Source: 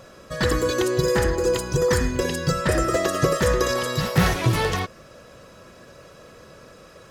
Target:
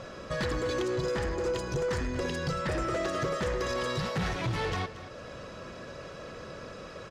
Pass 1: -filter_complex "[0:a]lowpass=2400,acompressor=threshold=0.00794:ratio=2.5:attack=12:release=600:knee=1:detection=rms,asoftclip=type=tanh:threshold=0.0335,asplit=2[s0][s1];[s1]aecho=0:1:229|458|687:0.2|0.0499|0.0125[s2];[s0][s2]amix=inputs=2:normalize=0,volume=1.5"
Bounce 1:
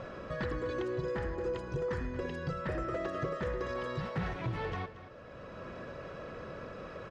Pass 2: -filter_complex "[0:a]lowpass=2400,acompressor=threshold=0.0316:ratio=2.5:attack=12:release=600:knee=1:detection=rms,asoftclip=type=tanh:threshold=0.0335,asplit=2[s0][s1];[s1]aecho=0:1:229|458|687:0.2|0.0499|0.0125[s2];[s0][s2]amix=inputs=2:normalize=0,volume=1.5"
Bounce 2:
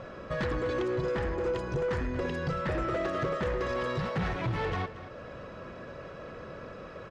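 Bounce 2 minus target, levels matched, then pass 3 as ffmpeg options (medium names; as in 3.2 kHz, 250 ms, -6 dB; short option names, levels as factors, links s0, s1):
4 kHz band -6.0 dB
-filter_complex "[0:a]lowpass=5400,acompressor=threshold=0.0316:ratio=2.5:attack=12:release=600:knee=1:detection=rms,asoftclip=type=tanh:threshold=0.0335,asplit=2[s0][s1];[s1]aecho=0:1:229|458|687:0.2|0.0499|0.0125[s2];[s0][s2]amix=inputs=2:normalize=0,volume=1.5"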